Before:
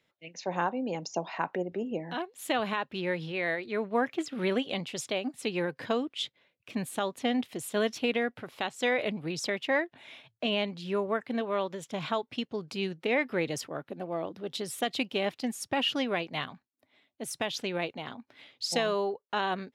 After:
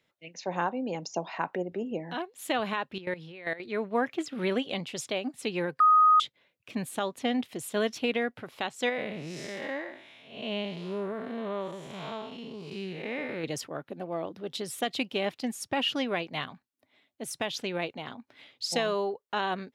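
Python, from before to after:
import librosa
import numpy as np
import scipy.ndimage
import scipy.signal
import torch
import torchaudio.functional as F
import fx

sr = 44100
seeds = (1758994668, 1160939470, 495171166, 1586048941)

y = fx.level_steps(x, sr, step_db=15, at=(2.98, 3.6))
y = fx.spec_blur(y, sr, span_ms=226.0, at=(8.89, 13.44))
y = fx.edit(y, sr, fx.bleep(start_s=5.8, length_s=0.4, hz=1250.0, db=-16.0), tone=tone)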